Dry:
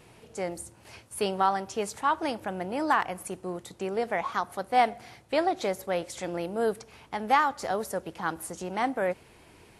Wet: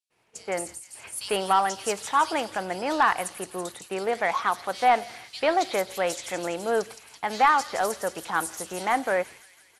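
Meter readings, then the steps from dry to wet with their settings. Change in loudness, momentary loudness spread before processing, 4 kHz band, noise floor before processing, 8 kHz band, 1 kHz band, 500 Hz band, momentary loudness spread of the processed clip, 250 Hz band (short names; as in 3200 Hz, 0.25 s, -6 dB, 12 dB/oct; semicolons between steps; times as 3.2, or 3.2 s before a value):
+3.5 dB, 12 LU, +5.5 dB, -56 dBFS, +7.5 dB, +3.5 dB, +2.5 dB, 12 LU, -1.0 dB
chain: overdrive pedal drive 11 dB, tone 3300 Hz, clips at -11 dBFS; high shelf 2500 Hz +7.5 dB; bands offset in time highs, lows 0.1 s, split 3700 Hz; expander -39 dBFS; on a send: thin delay 0.166 s, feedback 64%, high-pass 5100 Hz, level -4 dB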